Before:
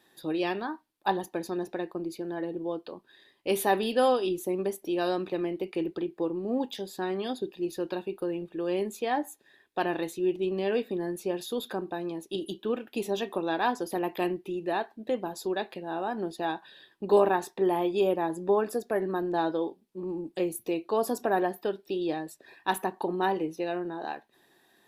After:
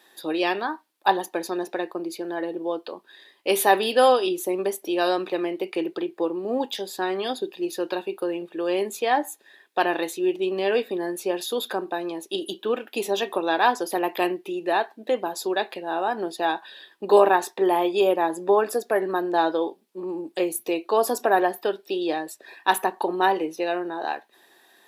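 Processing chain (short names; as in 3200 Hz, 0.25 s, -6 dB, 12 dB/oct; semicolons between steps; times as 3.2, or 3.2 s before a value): Bessel high-pass 450 Hz, order 2; gain +8.5 dB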